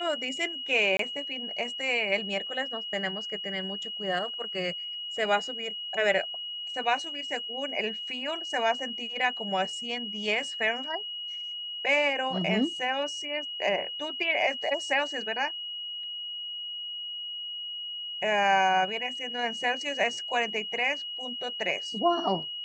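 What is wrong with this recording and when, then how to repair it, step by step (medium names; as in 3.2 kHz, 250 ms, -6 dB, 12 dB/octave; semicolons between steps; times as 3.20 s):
whine 2.9 kHz -34 dBFS
0.97–0.99 s: dropout 23 ms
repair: band-stop 2.9 kHz, Q 30; interpolate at 0.97 s, 23 ms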